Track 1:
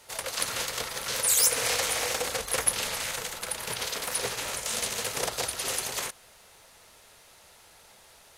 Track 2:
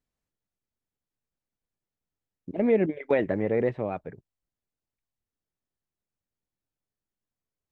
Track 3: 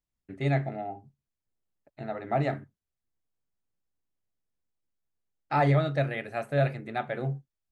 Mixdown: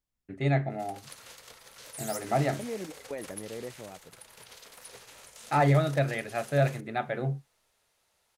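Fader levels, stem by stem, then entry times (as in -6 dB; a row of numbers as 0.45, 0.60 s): -18.0, -14.5, +0.5 dB; 0.70, 0.00, 0.00 s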